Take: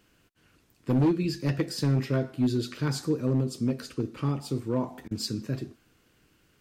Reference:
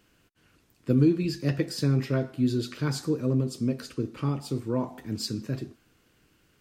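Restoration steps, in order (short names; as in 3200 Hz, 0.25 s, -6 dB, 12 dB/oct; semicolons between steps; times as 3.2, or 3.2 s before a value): clip repair -18.5 dBFS; interpolate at 5.08, 29 ms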